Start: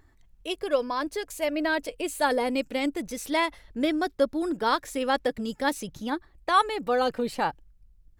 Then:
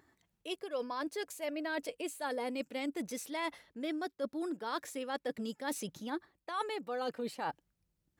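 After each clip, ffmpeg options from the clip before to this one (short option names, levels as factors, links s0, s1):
-af "highpass=170,areverse,acompressor=threshold=0.0251:ratio=6,areverse,volume=0.75"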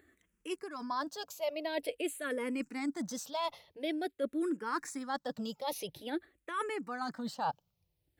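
-filter_complex "[0:a]asplit=2[s0][s1];[s1]afreqshift=-0.48[s2];[s0][s2]amix=inputs=2:normalize=1,volume=1.68"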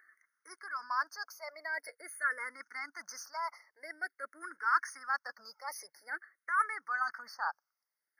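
-af "highpass=f=1400:t=q:w=3.7,afftfilt=real='re*eq(mod(floor(b*sr/1024/2200),2),0)':imag='im*eq(mod(floor(b*sr/1024/2200),2),0)':win_size=1024:overlap=0.75"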